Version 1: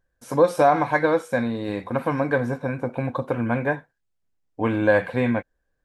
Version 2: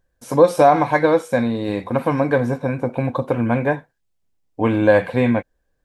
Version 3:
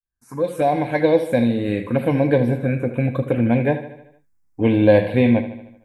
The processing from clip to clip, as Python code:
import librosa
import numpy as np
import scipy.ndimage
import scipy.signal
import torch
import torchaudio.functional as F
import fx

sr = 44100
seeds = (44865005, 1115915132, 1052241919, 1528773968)

y1 = fx.peak_eq(x, sr, hz=1500.0, db=-4.5, octaves=0.74)
y1 = F.gain(torch.from_numpy(y1), 5.0).numpy()
y2 = fx.fade_in_head(y1, sr, length_s=1.19)
y2 = fx.env_phaser(y2, sr, low_hz=550.0, high_hz=1300.0, full_db=-14.0)
y2 = fx.echo_feedback(y2, sr, ms=76, feedback_pct=55, wet_db=-12.0)
y2 = F.gain(torch.from_numpy(y2), 2.5).numpy()